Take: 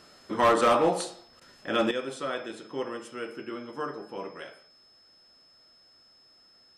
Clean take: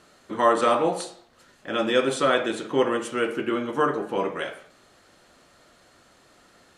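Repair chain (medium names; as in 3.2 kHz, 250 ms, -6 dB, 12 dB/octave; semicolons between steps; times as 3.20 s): clip repair -16 dBFS; band-stop 5.2 kHz, Q 30; interpolate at 1.40 s, 12 ms; trim 0 dB, from 1.91 s +11.5 dB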